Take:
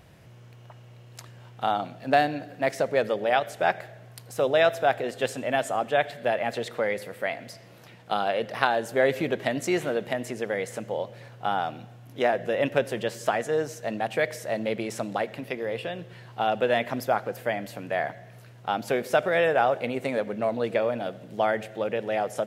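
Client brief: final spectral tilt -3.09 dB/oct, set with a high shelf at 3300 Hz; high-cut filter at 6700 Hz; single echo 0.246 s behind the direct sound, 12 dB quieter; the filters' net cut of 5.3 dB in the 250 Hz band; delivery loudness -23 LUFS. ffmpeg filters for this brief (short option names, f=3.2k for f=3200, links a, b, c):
-af "lowpass=6.7k,equalizer=f=250:t=o:g=-7,highshelf=f=3.3k:g=-8,aecho=1:1:246:0.251,volume=5.5dB"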